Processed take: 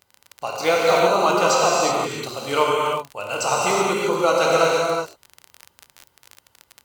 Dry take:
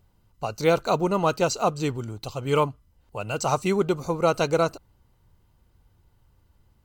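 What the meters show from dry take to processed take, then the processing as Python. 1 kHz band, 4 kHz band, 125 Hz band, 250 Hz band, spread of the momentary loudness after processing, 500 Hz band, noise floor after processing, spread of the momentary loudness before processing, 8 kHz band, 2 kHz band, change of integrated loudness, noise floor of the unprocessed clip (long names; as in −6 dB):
+7.5 dB, +9.5 dB, −5.5 dB, −0.5 dB, 11 LU, +5.0 dB, −65 dBFS, 12 LU, +9.5 dB, +9.0 dB, +5.5 dB, −64 dBFS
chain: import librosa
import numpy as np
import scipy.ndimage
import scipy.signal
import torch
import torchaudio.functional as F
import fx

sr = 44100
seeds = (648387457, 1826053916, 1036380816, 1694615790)

y = fx.rev_gated(x, sr, seeds[0], gate_ms=400, shape='flat', drr_db=-4.5)
y = fx.dmg_crackle(y, sr, seeds[1], per_s=38.0, level_db=-28.0)
y = fx.highpass(y, sr, hz=790.0, slope=6)
y = F.gain(torch.from_numpy(y), 4.0).numpy()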